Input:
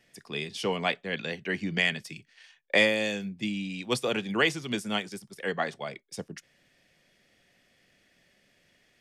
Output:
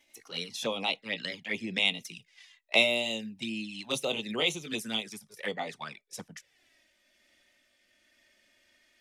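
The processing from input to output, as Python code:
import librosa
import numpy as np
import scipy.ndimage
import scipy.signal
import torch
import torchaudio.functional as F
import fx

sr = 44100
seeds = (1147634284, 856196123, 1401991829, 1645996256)

y = fx.pitch_glide(x, sr, semitones=2.5, runs='ending unshifted')
y = fx.env_flanger(y, sr, rest_ms=3.4, full_db=-27.5)
y = fx.tilt_shelf(y, sr, db=-4.0, hz=710.0)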